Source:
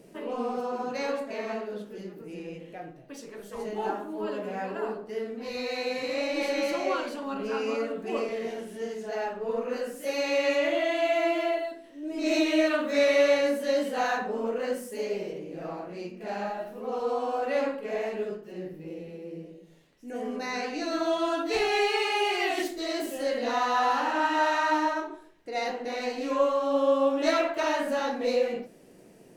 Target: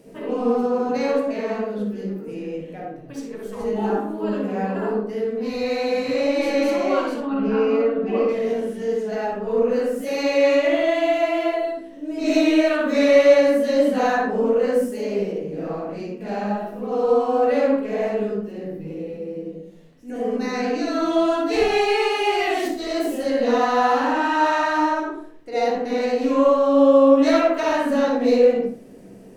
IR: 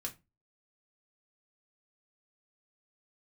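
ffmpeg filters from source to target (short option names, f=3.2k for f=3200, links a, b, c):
-filter_complex "[0:a]asettb=1/sr,asplit=3[a][b][c];[a]atrim=end=7.204[d];[b]atrim=start=7.2:end=8.29,asetpts=PTS-STARTPTS,afade=t=in:d=0.004:c=qsin,afade=t=out:st=1.086:d=0.004:c=qsin,lowpass=3.3k[e];[c]atrim=start=8.286[f];[d][e]acrossfade=d=0.004:c1=hsin:c2=qsin[g];[g][f]acrossfade=d=0.004:c1=qsin:c2=hsin,asplit=2[h][i];[i]tiltshelf=f=1.4k:g=8[j];[1:a]atrim=start_sample=2205,adelay=57[k];[j][k]afir=irnorm=-1:irlink=0,volume=0.5dB[l];[h][l]amix=inputs=2:normalize=0,volume=2dB"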